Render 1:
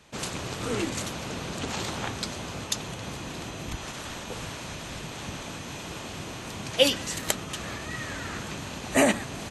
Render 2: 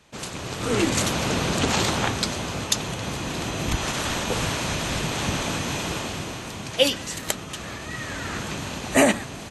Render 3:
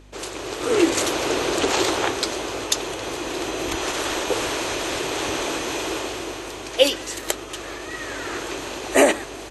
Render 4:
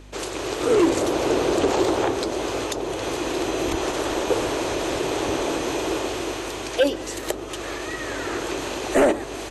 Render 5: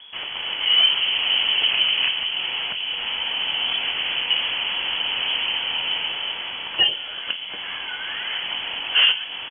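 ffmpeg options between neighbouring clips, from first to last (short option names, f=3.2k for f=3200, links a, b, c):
-af "dynaudnorm=f=310:g=5:m=12dB,volume=-1dB"
-af "aeval=exprs='val(0)+0.0141*(sin(2*PI*50*n/s)+sin(2*PI*2*50*n/s)/2+sin(2*PI*3*50*n/s)/3+sin(2*PI*4*50*n/s)/4+sin(2*PI*5*50*n/s)/5)':c=same,lowshelf=f=260:t=q:w=3:g=-10,volume=1dB"
-filter_complex "[0:a]acrossover=split=900[a][b];[a]asoftclip=type=hard:threshold=-17dB[c];[b]acompressor=threshold=-34dB:ratio=6[d];[c][d]amix=inputs=2:normalize=0,volume=3.5dB"
-af "aecho=1:1:24|50:0.282|0.168,lowpass=f=2.9k:t=q:w=0.5098,lowpass=f=2.9k:t=q:w=0.6013,lowpass=f=2.9k:t=q:w=0.9,lowpass=f=2.9k:t=q:w=2.563,afreqshift=-3400"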